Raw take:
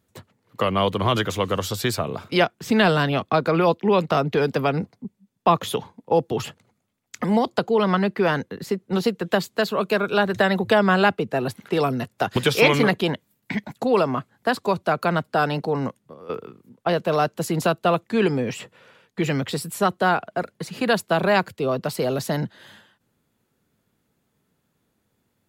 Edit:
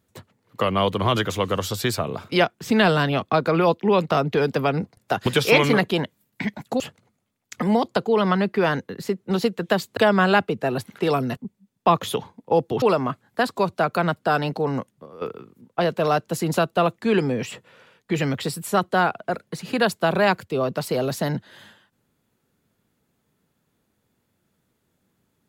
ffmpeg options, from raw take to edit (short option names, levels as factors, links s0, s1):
-filter_complex "[0:a]asplit=6[s0][s1][s2][s3][s4][s5];[s0]atrim=end=4.972[s6];[s1]atrim=start=12.068:end=13.902[s7];[s2]atrim=start=6.418:end=9.592[s8];[s3]atrim=start=10.668:end=12.072[s9];[s4]atrim=start=4.968:end=6.422[s10];[s5]atrim=start=13.898[s11];[s6][s7]acrossfade=d=0.004:c1=hsin:c2=hsin[s12];[s12][s8]acrossfade=d=0.004:c1=hsin:c2=hsin[s13];[s13][s9]acrossfade=d=0.004:c1=hsin:c2=hsin[s14];[s14][s10]acrossfade=d=0.004:c1=hsin:c2=hsin[s15];[s15][s11]acrossfade=d=0.004:c1=hsin:c2=hsin"